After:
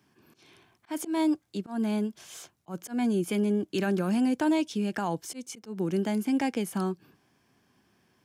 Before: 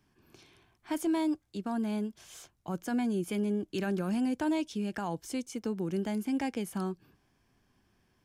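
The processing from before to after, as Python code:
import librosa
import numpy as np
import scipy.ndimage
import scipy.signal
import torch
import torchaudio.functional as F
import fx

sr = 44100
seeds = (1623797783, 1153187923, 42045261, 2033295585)

y = scipy.signal.sosfilt(scipy.signal.butter(2, 130.0, 'highpass', fs=sr, output='sos'), x)
y = fx.auto_swell(y, sr, attack_ms=158.0)
y = y * librosa.db_to_amplitude(5.0)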